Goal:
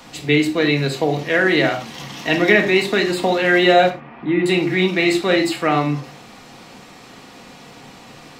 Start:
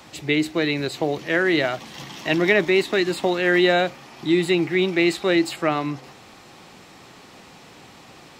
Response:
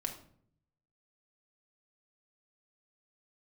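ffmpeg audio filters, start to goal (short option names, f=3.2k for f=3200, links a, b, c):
-filter_complex "[0:a]asettb=1/sr,asplit=3[a][b][c];[a]atrim=end=3.904[d];[b]atrim=start=3.9:end=4.46,asetpts=PTS-STARTPTS,afade=t=in:d=0.004:c=qsin,afade=t=out:st=0.556:d=0.004:c=qsin,lowpass=f=2.3k:w=0.5412,lowpass=f=2.3k:w=1.3066[e];[c]atrim=start=4.456[f];[d][e]acrossfade=d=0.004:c1=hsin:c2=qsin[g];[g][f]acrossfade=d=0.004:c1=qsin:c2=hsin[h];[1:a]atrim=start_sample=2205,afade=t=out:st=0.16:d=0.01,atrim=end_sample=7497[i];[h][i]afir=irnorm=-1:irlink=0,volume=4dB"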